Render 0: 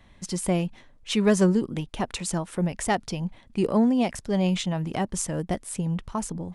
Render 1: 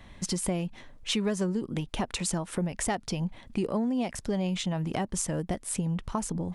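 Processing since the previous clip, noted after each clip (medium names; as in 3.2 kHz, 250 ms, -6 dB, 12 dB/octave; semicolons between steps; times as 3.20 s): compression 4:1, threshold -33 dBFS, peak gain reduction 15.5 dB; trim +5 dB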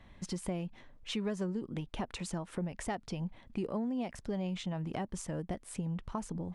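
treble shelf 5.1 kHz -10 dB; trim -6.5 dB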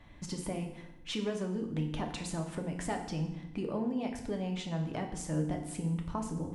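FDN reverb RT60 0.84 s, low-frequency decay 1.45×, high-frequency decay 0.9×, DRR 2.5 dB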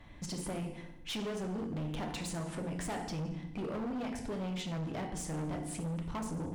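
overload inside the chain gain 36 dB; trim +1.5 dB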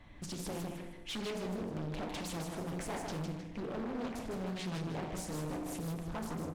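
feedback delay 155 ms, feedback 34%, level -5 dB; loudspeaker Doppler distortion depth 0.78 ms; trim -2 dB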